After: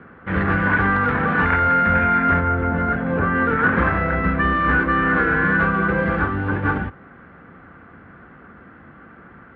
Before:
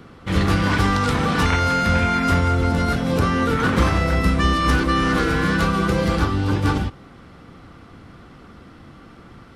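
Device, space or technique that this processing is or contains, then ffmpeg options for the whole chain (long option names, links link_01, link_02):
bass cabinet: -filter_complex "[0:a]highpass=66,equalizer=frequency=74:width_type=q:width=4:gain=-4,equalizer=frequency=120:width_type=q:width=4:gain=-8,equalizer=frequency=310:width_type=q:width=4:gain=-3,equalizer=frequency=1600:width_type=q:width=4:gain=10,lowpass=frequency=2200:width=0.5412,lowpass=frequency=2200:width=1.3066,asettb=1/sr,asplit=3[link_01][link_02][link_03];[link_01]atrim=end=2.404[link_04];[link_02]atrim=start=2.4:end=3.35,asetpts=PTS-STARTPTS,afade=type=in:duration=0.004:curve=qsin,afade=type=out:start_time=0.946:duration=0.004:curve=qsin,lowpass=frequency=2300:poles=1[link_05];[link_03]atrim=start=3.346[link_06];[link_04][link_05]acrossfade=duration=0.004:curve1=hsin:curve2=qsin[link_07];[link_07][link_06]acrossfade=duration=0.004:curve1=qsin:curve2=hsin"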